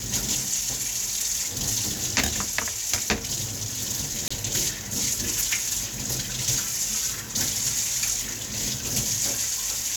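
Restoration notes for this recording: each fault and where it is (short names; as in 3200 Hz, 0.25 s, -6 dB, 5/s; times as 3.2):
4.28–4.3 gap 25 ms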